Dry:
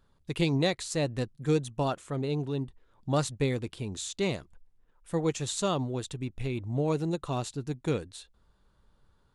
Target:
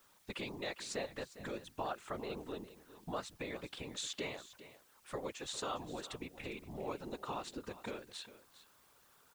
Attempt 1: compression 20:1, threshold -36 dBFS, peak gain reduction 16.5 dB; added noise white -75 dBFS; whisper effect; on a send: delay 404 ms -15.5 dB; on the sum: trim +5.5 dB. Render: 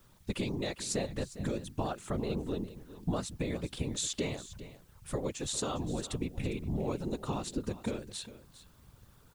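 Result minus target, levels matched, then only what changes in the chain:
2 kHz band -6.5 dB
add after compression: band-pass filter 1.5 kHz, Q 0.58

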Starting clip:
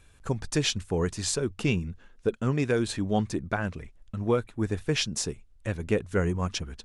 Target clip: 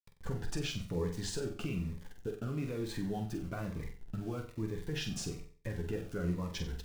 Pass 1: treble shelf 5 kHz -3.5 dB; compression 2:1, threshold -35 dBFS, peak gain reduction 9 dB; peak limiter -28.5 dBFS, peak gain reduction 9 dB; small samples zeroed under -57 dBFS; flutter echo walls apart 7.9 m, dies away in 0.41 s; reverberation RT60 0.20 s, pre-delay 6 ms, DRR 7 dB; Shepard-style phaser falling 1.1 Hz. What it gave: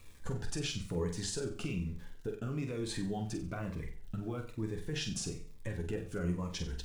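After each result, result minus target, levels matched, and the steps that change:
small samples zeroed: distortion -11 dB; 8 kHz band +3.0 dB
change: small samples zeroed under -48.5 dBFS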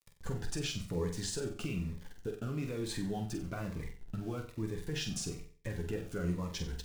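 8 kHz band +3.5 dB
change: treble shelf 5 kHz -15 dB

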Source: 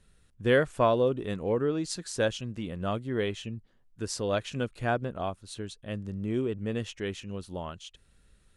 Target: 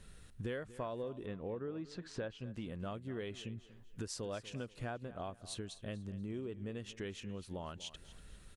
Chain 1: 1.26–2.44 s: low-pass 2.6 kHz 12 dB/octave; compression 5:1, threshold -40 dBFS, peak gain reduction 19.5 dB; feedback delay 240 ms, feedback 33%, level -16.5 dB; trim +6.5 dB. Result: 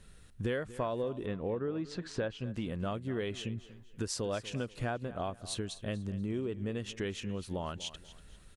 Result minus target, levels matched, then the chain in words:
compression: peak gain reduction -7 dB
1.26–2.44 s: low-pass 2.6 kHz 12 dB/octave; compression 5:1, threshold -48.5 dBFS, peak gain reduction 26 dB; feedback delay 240 ms, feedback 33%, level -16.5 dB; trim +6.5 dB

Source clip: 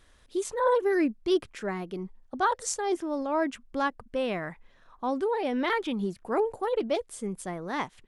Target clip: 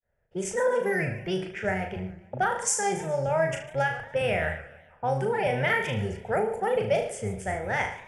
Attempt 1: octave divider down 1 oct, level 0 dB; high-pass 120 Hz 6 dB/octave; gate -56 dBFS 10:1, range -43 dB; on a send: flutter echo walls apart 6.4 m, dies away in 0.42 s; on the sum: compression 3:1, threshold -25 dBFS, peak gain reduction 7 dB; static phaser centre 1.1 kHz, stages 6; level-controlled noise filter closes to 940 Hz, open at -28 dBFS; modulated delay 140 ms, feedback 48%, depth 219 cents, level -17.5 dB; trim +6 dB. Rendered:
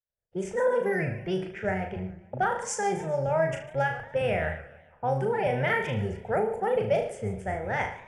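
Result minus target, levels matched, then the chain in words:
4 kHz band -3.5 dB
octave divider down 1 oct, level 0 dB; high-pass 120 Hz 6 dB/octave; treble shelf 2 kHz +7 dB; gate -56 dBFS 10:1, range -43 dB; on a send: flutter echo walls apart 6.4 m, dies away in 0.42 s; on the sum: compression 3:1, threshold -25 dBFS, peak gain reduction 7.5 dB; static phaser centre 1.1 kHz, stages 6; level-controlled noise filter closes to 940 Hz, open at -28 dBFS; modulated delay 140 ms, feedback 48%, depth 219 cents, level -17.5 dB; trim +6 dB

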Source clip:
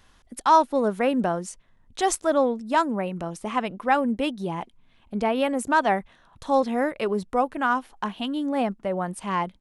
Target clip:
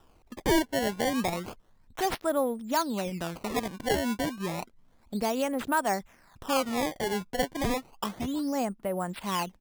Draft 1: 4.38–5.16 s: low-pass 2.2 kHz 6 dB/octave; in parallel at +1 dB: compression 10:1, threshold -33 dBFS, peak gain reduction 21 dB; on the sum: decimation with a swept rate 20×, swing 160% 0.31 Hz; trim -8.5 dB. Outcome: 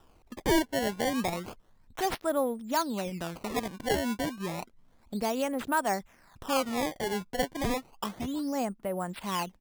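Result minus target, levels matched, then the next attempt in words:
compression: peak gain reduction +5.5 dB
4.38–5.16 s: low-pass 2.2 kHz 6 dB/octave; in parallel at +1 dB: compression 10:1, threshold -27 dBFS, peak gain reduction 15.5 dB; on the sum: decimation with a swept rate 20×, swing 160% 0.31 Hz; trim -8.5 dB

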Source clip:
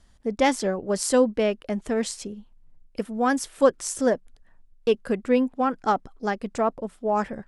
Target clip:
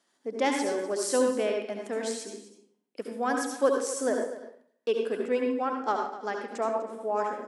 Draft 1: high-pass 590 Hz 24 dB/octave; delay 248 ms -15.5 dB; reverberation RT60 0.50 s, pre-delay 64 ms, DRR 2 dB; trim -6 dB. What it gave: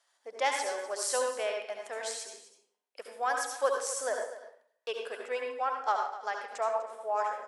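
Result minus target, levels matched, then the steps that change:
250 Hz band -20.0 dB
change: high-pass 270 Hz 24 dB/octave

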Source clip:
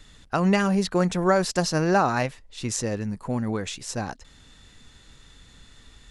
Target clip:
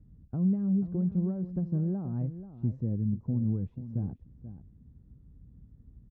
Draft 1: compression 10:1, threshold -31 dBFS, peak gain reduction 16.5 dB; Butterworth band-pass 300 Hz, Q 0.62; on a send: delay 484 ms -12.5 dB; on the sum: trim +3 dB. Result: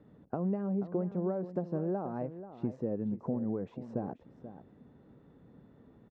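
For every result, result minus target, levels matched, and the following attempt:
compression: peak gain reduction +8 dB; 125 Hz band -5.0 dB
compression 10:1, threshold -22 dBFS, peak gain reduction 8 dB; Butterworth band-pass 300 Hz, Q 0.62; on a send: delay 484 ms -12.5 dB; on the sum: trim +3 dB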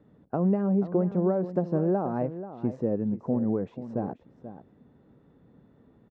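125 Hz band -5.0 dB
compression 10:1, threshold -22 dBFS, peak gain reduction 8 dB; Butterworth band-pass 100 Hz, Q 0.62; on a send: delay 484 ms -12.5 dB; on the sum: trim +3 dB

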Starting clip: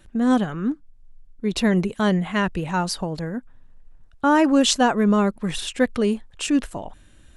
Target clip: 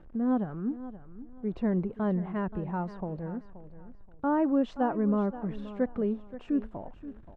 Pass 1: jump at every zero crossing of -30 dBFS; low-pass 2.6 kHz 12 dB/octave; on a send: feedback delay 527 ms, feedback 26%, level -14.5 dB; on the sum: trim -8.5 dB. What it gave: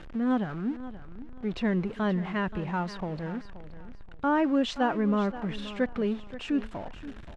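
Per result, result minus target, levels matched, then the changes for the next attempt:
2 kHz band +8.5 dB; jump at every zero crossing: distortion +9 dB
change: low-pass 970 Hz 12 dB/octave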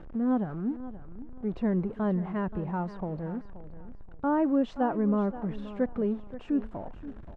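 jump at every zero crossing: distortion +9 dB
change: jump at every zero crossing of -39.5 dBFS

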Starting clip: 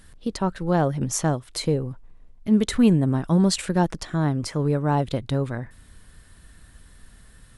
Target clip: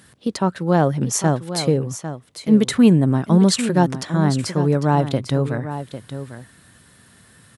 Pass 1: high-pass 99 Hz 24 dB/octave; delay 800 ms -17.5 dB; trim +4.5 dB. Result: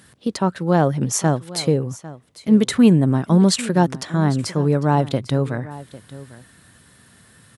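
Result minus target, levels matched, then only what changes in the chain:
echo-to-direct -6.5 dB
change: delay 800 ms -11 dB

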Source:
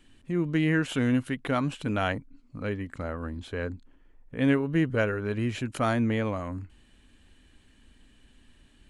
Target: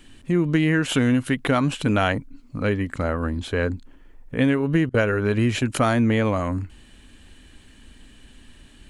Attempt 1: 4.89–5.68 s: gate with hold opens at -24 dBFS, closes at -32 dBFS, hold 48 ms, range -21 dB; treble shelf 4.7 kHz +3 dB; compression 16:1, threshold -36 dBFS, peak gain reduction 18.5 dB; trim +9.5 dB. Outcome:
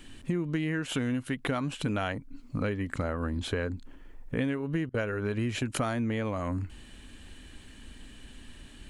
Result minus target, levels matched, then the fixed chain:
compression: peak gain reduction +11 dB
4.89–5.68 s: gate with hold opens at -24 dBFS, closes at -32 dBFS, hold 48 ms, range -21 dB; treble shelf 4.7 kHz +3 dB; compression 16:1, threshold -24.5 dBFS, peak gain reduction 8 dB; trim +9.5 dB

